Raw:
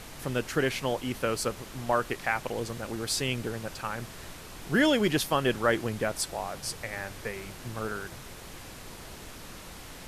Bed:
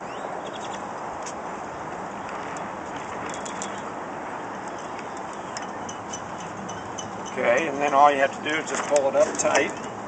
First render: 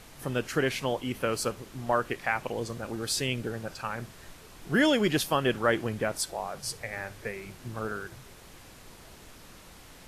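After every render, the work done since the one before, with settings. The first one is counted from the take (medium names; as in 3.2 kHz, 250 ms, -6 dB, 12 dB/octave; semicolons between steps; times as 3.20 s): noise print and reduce 6 dB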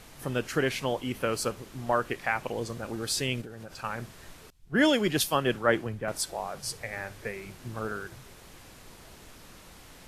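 3.41–3.84 s: compression 10:1, threshold -38 dBFS; 4.50–6.08 s: three bands expanded up and down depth 100%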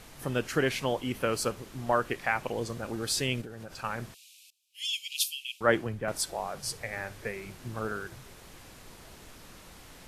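4.14–5.61 s: steep high-pass 2.4 kHz 96 dB/octave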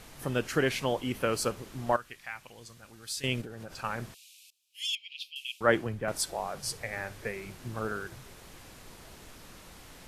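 1.96–3.24 s: amplifier tone stack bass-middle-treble 5-5-5; 4.95–5.36 s: distance through air 360 m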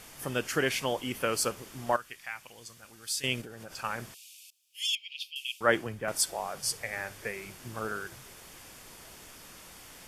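tilt EQ +1.5 dB/octave; band-stop 4 kHz, Q 11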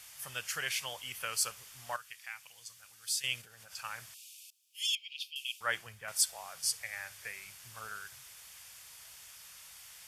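high-pass 73 Hz; amplifier tone stack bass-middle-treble 10-0-10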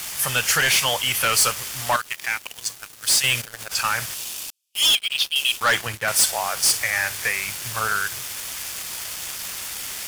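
waveshaping leveller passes 5; in parallel at +1 dB: peak limiter -25.5 dBFS, peak gain reduction 10 dB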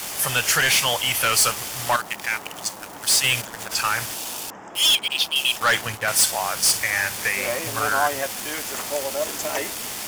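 add bed -7 dB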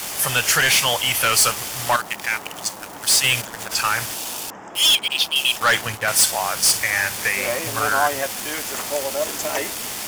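trim +2 dB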